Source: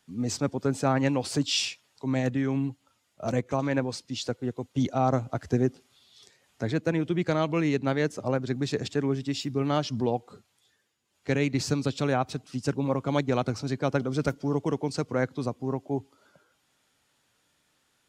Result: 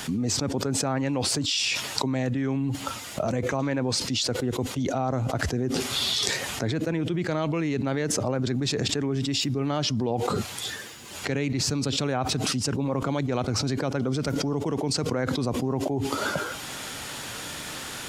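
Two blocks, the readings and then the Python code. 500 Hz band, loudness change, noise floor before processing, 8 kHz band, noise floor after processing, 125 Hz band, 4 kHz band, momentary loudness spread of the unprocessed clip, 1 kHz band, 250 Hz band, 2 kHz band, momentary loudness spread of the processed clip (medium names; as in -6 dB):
0.0 dB, +1.5 dB, -72 dBFS, +9.5 dB, -37 dBFS, +1.5 dB, +8.5 dB, 7 LU, +0.5 dB, +1.0 dB, +3.5 dB, 8 LU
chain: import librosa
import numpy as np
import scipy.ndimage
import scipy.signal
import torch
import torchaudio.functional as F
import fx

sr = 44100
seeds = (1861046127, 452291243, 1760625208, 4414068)

y = fx.env_flatten(x, sr, amount_pct=100)
y = F.gain(torch.from_numpy(y), -5.5).numpy()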